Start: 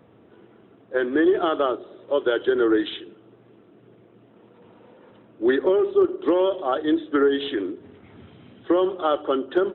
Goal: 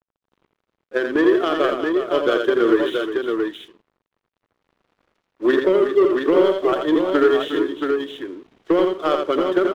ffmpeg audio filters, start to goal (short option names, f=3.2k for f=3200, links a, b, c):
-filter_complex "[0:a]equalizer=f=810:t=o:w=0.24:g=-8.5,asplit=2[a][b];[b]acrusher=bits=2:mix=0:aa=0.5,volume=-9.5dB[c];[a][c]amix=inputs=2:normalize=0,equalizer=f=87:t=o:w=0.72:g=-8.5,aeval=exprs='sgn(val(0))*max(abs(val(0))-0.00531,0)':c=same,aecho=1:1:67|84|360|677:0.141|0.531|0.316|0.596"